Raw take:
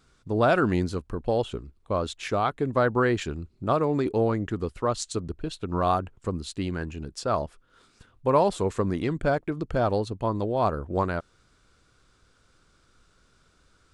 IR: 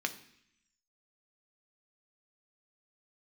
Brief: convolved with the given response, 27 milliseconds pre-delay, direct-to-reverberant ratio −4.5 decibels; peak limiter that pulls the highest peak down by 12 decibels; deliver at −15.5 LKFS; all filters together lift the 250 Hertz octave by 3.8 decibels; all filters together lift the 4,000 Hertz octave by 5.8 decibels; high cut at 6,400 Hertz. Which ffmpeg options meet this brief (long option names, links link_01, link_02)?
-filter_complex "[0:a]lowpass=6400,equalizer=frequency=250:width_type=o:gain=5,equalizer=frequency=4000:width_type=o:gain=7.5,alimiter=limit=-20dB:level=0:latency=1,asplit=2[link_01][link_02];[1:a]atrim=start_sample=2205,adelay=27[link_03];[link_02][link_03]afir=irnorm=-1:irlink=0,volume=0.5dB[link_04];[link_01][link_04]amix=inputs=2:normalize=0,volume=10dB"